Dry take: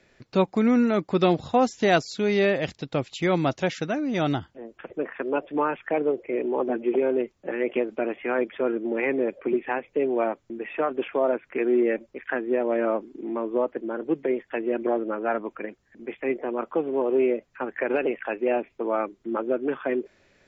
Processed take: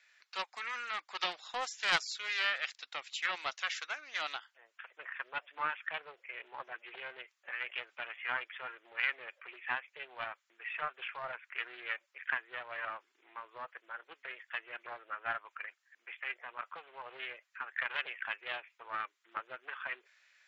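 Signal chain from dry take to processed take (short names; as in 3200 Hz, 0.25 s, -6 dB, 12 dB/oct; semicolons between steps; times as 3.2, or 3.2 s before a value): ladder high-pass 1100 Hz, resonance 20%; Doppler distortion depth 0.17 ms; gain +2 dB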